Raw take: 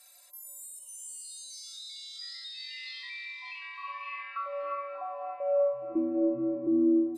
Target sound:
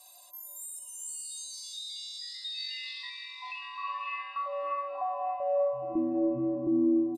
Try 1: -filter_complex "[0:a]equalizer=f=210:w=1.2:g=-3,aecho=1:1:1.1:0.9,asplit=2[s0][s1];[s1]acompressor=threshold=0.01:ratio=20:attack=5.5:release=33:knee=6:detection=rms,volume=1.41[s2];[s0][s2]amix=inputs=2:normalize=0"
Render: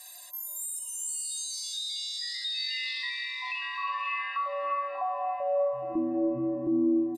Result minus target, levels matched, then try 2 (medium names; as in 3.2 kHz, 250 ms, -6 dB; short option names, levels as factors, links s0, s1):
2 kHz band +6.0 dB
-filter_complex "[0:a]equalizer=f=210:w=1.2:g=-3,aecho=1:1:1.1:0.9,asplit=2[s0][s1];[s1]acompressor=threshold=0.01:ratio=20:attack=5.5:release=33:knee=6:detection=rms,lowpass=f=1800:w=0.5412,lowpass=f=1800:w=1.3066,volume=1.41[s2];[s0][s2]amix=inputs=2:normalize=0"